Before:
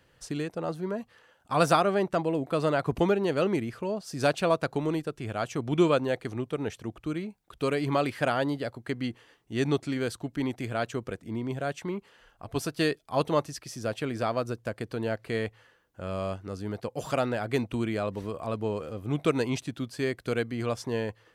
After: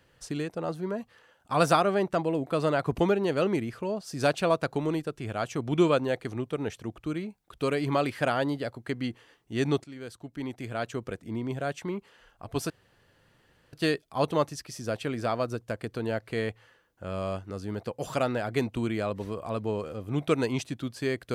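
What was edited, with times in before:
9.84–11.16 fade in, from -15.5 dB
12.7 insert room tone 1.03 s

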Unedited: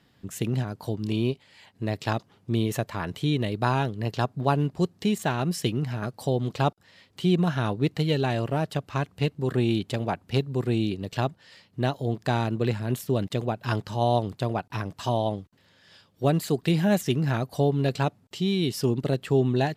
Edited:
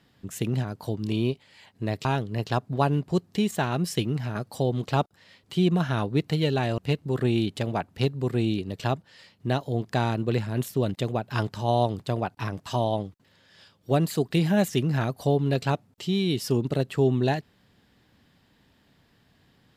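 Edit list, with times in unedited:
2.05–3.72 cut
8.45–9.11 cut

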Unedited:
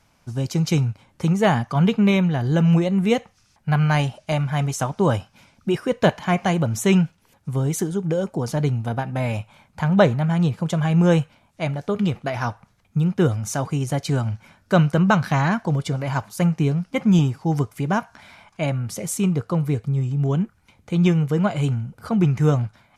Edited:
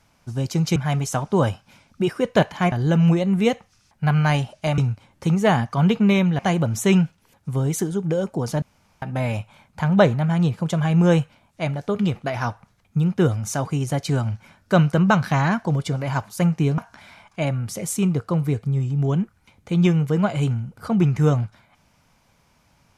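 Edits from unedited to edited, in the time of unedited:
0.76–2.37 swap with 4.43–6.39
8.62–9.02 room tone
16.78–17.99 cut

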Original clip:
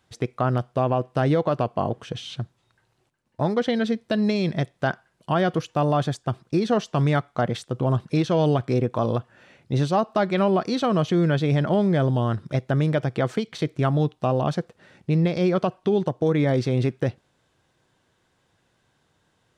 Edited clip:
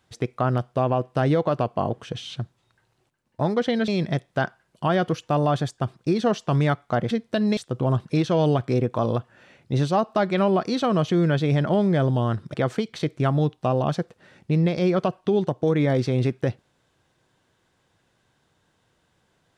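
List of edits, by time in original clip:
3.88–4.34 move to 7.57
12.54–13.13 cut

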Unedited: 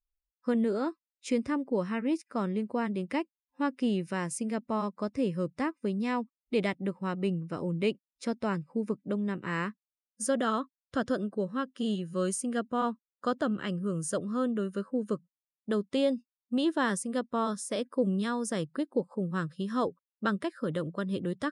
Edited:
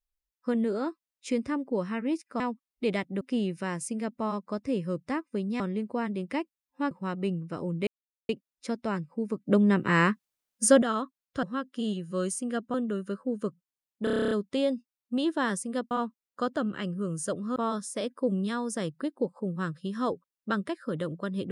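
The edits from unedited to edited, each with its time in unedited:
2.4–3.71 swap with 6.1–6.91
7.87 insert silence 0.42 s
9.05–10.4 gain +9.5 dB
11.01–11.45 cut
12.76–14.41 move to 17.31
15.71 stutter 0.03 s, 10 plays

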